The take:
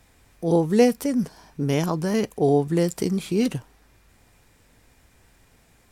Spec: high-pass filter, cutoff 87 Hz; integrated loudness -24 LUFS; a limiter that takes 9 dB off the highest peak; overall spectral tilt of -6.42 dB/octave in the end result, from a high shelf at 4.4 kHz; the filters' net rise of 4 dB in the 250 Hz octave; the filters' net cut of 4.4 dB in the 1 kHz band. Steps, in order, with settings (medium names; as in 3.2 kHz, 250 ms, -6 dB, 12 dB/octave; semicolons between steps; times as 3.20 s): high-pass 87 Hz; peaking EQ 250 Hz +5.5 dB; peaking EQ 1 kHz -8 dB; treble shelf 4.4 kHz +6 dB; peak limiter -13.5 dBFS